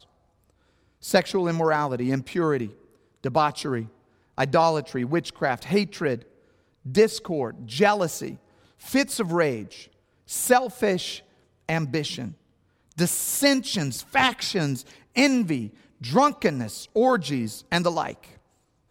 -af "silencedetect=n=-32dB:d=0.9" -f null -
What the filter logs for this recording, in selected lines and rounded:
silence_start: 0.00
silence_end: 1.04 | silence_duration: 1.04